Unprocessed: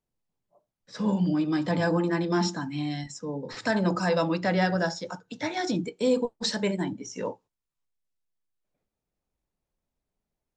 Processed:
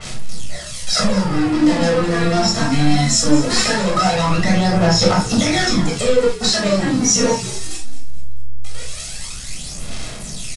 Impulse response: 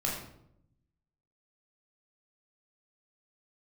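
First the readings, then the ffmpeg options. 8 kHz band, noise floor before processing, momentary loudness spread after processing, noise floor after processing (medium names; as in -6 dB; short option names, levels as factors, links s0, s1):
+23.0 dB, under -85 dBFS, 15 LU, -30 dBFS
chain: -filter_complex "[0:a]aeval=exprs='val(0)+0.5*0.0188*sgn(val(0))':c=same,asplit=2[s0][s1];[s1]alimiter=limit=0.1:level=0:latency=1,volume=1.26[s2];[s0][s2]amix=inputs=2:normalize=0,acompressor=threshold=0.0562:ratio=12,acrossover=split=2200[s3][s4];[s3]acrusher=bits=4:mix=0:aa=0.5[s5];[s5][s4]amix=inputs=2:normalize=0,aphaser=in_gain=1:out_gain=1:delay=4.4:decay=0.67:speed=0.2:type=sinusoidal,asoftclip=type=tanh:threshold=0.0944,asplit=5[s6][s7][s8][s9][s10];[s7]adelay=218,afreqshift=-70,volume=0.188[s11];[s8]adelay=436,afreqshift=-140,volume=0.0813[s12];[s9]adelay=654,afreqshift=-210,volume=0.0347[s13];[s10]adelay=872,afreqshift=-280,volume=0.015[s14];[s6][s11][s12][s13][s14]amix=inputs=5:normalize=0[s15];[1:a]atrim=start_sample=2205,atrim=end_sample=3969[s16];[s15][s16]afir=irnorm=-1:irlink=0,aresample=22050,aresample=44100,adynamicequalizer=threshold=0.01:dfrequency=4000:dqfactor=0.7:tfrequency=4000:tqfactor=0.7:attack=5:release=100:ratio=0.375:range=3.5:mode=boostabove:tftype=highshelf,volume=1.68"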